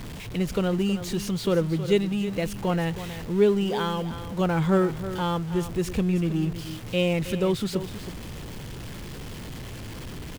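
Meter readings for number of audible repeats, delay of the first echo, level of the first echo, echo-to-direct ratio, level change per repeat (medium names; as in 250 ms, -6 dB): 1, 319 ms, -12.0 dB, -12.0 dB, no regular repeats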